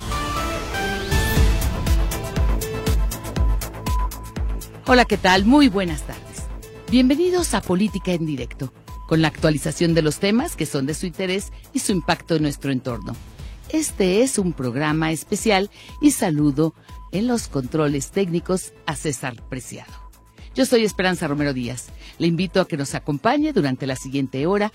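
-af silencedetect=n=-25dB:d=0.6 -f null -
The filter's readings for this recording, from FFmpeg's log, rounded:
silence_start: 19.78
silence_end: 20.58 | silence_duration: 0.80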